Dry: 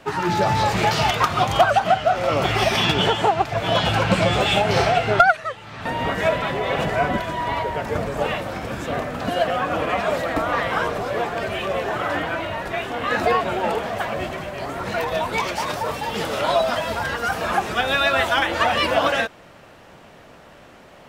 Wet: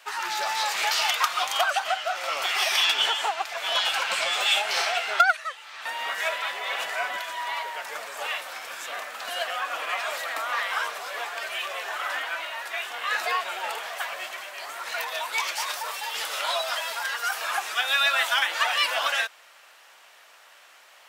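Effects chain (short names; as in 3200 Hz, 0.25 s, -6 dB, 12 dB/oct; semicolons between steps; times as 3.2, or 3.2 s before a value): HPF 920 Hz 12 dB/oct; tilt +2.5 dB/oct; gain -4 dB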